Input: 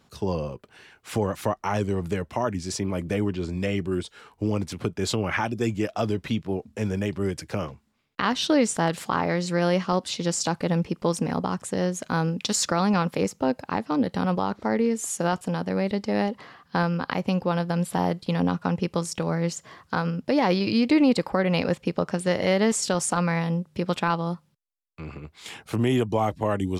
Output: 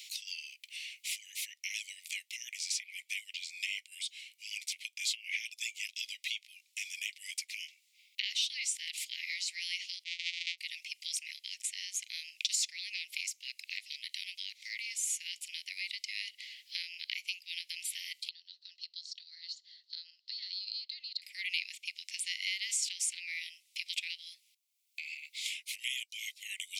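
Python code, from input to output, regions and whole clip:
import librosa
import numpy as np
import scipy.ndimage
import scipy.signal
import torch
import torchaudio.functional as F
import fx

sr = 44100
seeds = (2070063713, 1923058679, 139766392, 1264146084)

y = fx.chain(x, sr, fx.sample_sort(block=256),
    fx.lowpass(hz=4500.0, slope=24), at=(10.04, 10.58))
y = fx.chain(y, sr, fx.double_bandpass(hz=2300.0, octaves=1.8),
    fx.air_absorb(metres=150.0), at=(18.29, 21.22))
y = scipy.signal.sosfilt(scipy.signal.butter(16, 2100.0, 'highpass', fs=sr, output='sos'), y)
y = fx.band_squash(y, sr, depth_pct=70)
y = F.gain(torch.from_numpy(y), 1.0).numpy()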